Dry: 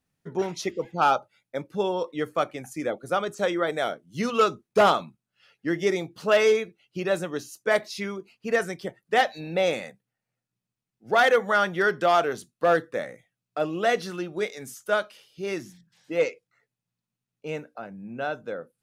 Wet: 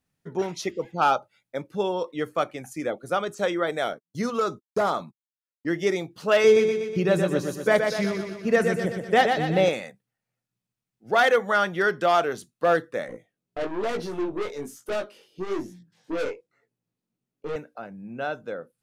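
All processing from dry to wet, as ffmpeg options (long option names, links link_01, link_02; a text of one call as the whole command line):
ffmpeg -i in.wav -filter_complex "[0:a]asettb=1/sr,asplit=3[link_01][link_02][link_03];[link_01]atrim=end=3.934[link_04];[link_02]atrim=start=3.93:end=5.67,asetpts=PTS-STARTPTS,afade=type=in:duration=0.004:curve=qsin,afade=type=out:start_time=1.736:duration=0.004:curve=qsin,equalizer=frequency=2800:width=3.3:gain=-13.5,agate=range=-42dB:threshold=-48dB:ratio=16:release=100:detection=peak,acompressor=threshold=-19dB:ratio=6:attack=3.2:release=140:knee=1:detection=peak[link_05];[link_03]atrim=start=5.666[link_06];[link_04][link_05]acrossfade=duration=0.004:curve1=hsin:curve2=qsin[link_07];[link_07][link_06]acrossfade=duration=0.004:curve1=qsin:curve2=hsin,asettb=1/sr,asplit=3[link_08][link_09][link_10];[link_08]atrim=end=6.444[link_11];[link_09]atrim=start=6.44:end=9.69,asetpts=PTS-STARTPTS,afade=type=in:duration=0.004:curve=qsin,afade=type=out:start_time=3.246:duration=0.004:curve=qsin,equalizer=frequency=100:width=0.35:gain=10.5,aecho=1:1:122|244|366|488|610|732|854:0.531|0.292|0.161|0.0883|0.0486|0.0267|0.0147,atrim=end_sample=143325[link_12];[link_10]atrim=start=9.686[link_13];[link_11][link_12]acrossfade=duration=0.004:curve1=hsin:curve2=qsin[link_14];[link_14][link_13]acrossfade=duration=0.004:curve1=qsin:curve2=hsin,asettb=1/sr,asplit=3[link_15][link_16][link_17];[link_15]atrim=end=13.084[link_18];[link_16]atrim=start=13.08:end=17.56,asetpts=PTS-STARTPTS,afade=type=in:duration=0.004:curve=qsin,afade=type=out:start_time=4.476:duration=0.004:curve=qsin,equalizer=frequency=350:width=0.7:gain=14,aeval=exprs='(tanh(14.1*val(0)+0.3)-tanh(0.3))/14.1':channel_layout=same,flanger=delay=17:depth=5.1:speed=1.1[link_19];[link_17]atrim=start=17.556[link_20];[link_18][link_19]acrossfade=duration=0.004:curve1=hsin:curve2=qsin[link_21];[link_21][link_20]acrossfade=duration=0.004:curve1=qsin:curve2=hsin" out.wav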